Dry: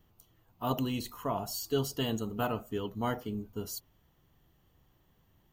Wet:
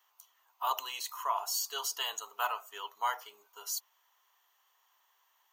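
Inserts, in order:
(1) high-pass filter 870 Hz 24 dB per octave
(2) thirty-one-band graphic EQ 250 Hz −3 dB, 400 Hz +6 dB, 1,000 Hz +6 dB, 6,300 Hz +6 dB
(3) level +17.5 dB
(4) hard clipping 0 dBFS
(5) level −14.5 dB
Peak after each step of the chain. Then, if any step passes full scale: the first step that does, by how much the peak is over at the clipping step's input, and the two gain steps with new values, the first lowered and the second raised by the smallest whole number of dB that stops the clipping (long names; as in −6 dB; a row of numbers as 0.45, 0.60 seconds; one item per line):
−21.5, −20.0, −2.5, −2.5, −17.0 dBFS
no step passes full scale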